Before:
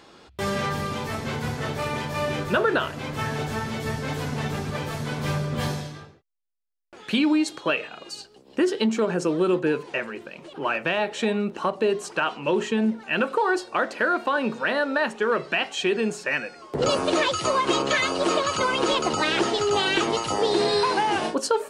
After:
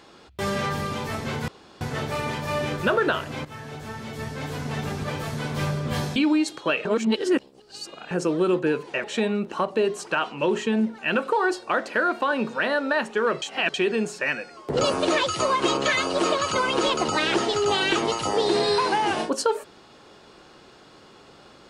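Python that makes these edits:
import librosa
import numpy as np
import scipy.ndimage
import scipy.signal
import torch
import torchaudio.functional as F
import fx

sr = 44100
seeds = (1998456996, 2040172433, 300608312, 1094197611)

y = fx.edit(x, sr, fx.insert_room_tone(at_s=1.48, length_s=0.33),
    fx.fade_in_from(start_s=3.12, length_s=1.58, floor_db=-13.0),
    fx.cut(start_s=5.83, length_s=1.33),
    fx.reverse_span(start_s=7.85, length_s=1.26),
    fx.cut(start_s=10.04, length_s=1.05),
    fx.reverse_span(start_s=15.47, length_s=0.32), tone=tone)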